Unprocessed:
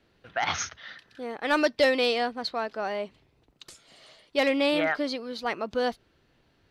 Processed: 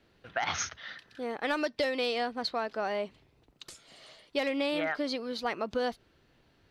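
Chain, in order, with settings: compression 6:1, threshold -27 dBFS, peak gain reduction 9.5 dB

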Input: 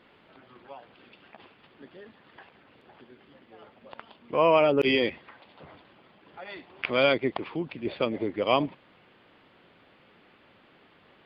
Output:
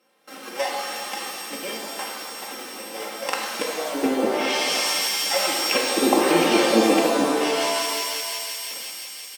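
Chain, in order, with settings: sorted samples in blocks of 16 samples; gate with hold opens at -46 dBFS; tempo 1.2×; peaking EQ 240 Hz -9.5 dB 0.6 oct; comb 3.8 ms, depth 88%; on a send: feedback echo behind a high-pass 174 ms, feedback 84%, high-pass 2.8 kHz, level -15.5 dB; on the sum: low-pass that closes with the level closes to 750 Hz, closed at -23 dBFS; in parallel at -11.5 dB: word length cut 8-bit, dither none; on the sum: high-pass 180 Hz 24 dB/octave; hum notches 60/120/180/240/300 Hz; compressor with a negative ratio -30 dBFS, ratio -0.5; pitch-shifted reverb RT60 1.8 s, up +7 st, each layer -2 dB, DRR 0 dB; trim +7.5 dB

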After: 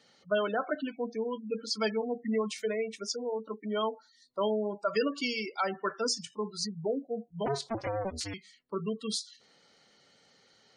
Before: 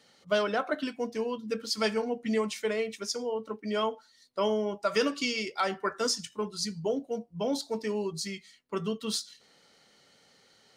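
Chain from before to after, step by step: 7.46–8.34 s: cycle switcher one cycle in 2, inverted; spectral gate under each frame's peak -20 dB strong; trim -1.5 dB

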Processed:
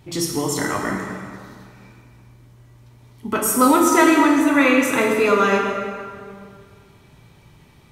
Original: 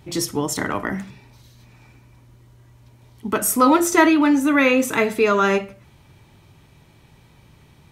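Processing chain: plate-style reverb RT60 2.1 s, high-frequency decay 0.7×, DRR 0 dB; trim -1.5 dB

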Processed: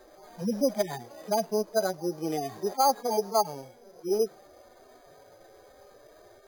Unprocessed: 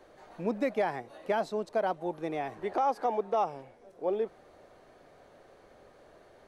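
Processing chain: harmonic-percussive separation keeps harmonic; careless resampling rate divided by 8×, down filtered, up hold; trim +5.5 dB

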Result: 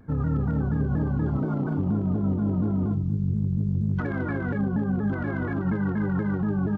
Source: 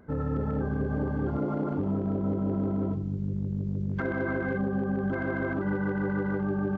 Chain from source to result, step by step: graphic EQ 125/500/2000 Hz +6/-7/-5 dB; vibrato with a chosen wave saw down 4.2 Hz, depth 160 cents; trim +2.5 dB

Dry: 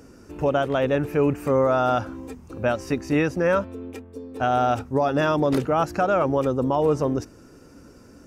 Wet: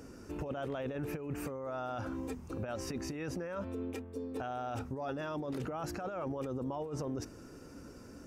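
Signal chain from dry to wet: compressor with a negative ratio -25 dBFS, ratio -0.5; peak limiter -22.5 dBFS, peak gain reduction 10.5 dB; trim -7.5 dB

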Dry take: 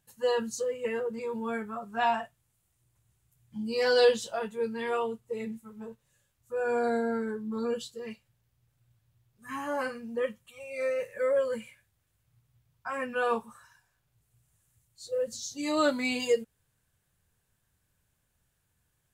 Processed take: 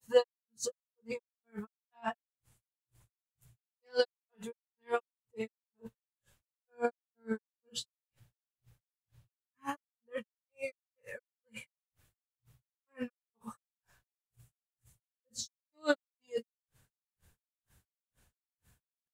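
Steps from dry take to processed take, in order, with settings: granulator 245 ms, grains 2.1 per s, pitch spread up and down by 0 st; attacks held to a fixed rise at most 440 dB/s; trim +8.5 dB

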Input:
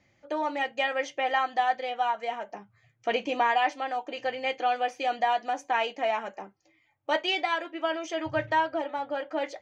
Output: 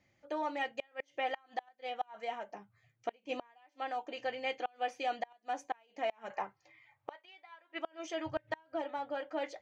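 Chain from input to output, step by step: 6.30–7.79 s: graphic EQ 125/250/500/1000/2000/4000 Hz +11/-7/+4/+11/+9/+6 dB; inverted gate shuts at -17 dBFS, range -32 dB; trim -6.5 dB

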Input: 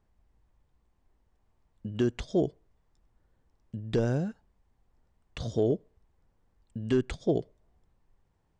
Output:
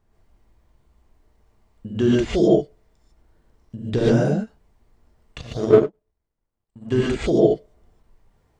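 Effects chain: gated-style reverb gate 170 ms rising, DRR -6.5 dB; 5.41–6.92 s: power-law waveshaper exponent 1.4; endings held to a fixed fall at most 530 dB/s; trim +3.5 dB

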